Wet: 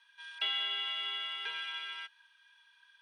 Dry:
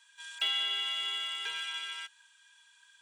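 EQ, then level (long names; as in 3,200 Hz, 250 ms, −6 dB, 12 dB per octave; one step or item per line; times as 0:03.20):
moving average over 6 samples
high-pass filter 140 Hz 6 dB per octave
0.0 dB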